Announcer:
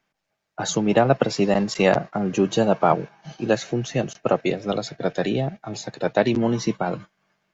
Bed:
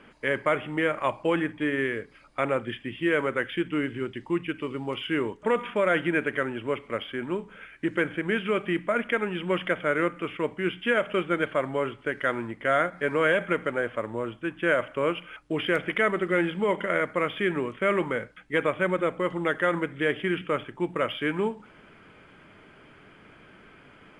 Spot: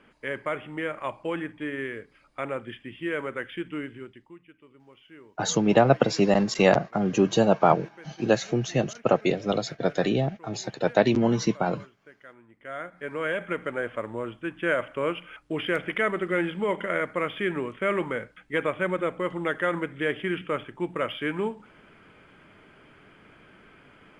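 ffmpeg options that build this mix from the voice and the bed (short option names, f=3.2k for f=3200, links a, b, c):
-filter_complex "[0:a]adelay=4800,volume=-1dB[a];[1:a]volume=15.5dB,afade=t=out:st=3.74:d=0.62:silence=0.141254,afade=t=in:st=12.47:d=1.46:silence=0.0891251[b];[a][b]amix=inputs=2:normalize=0"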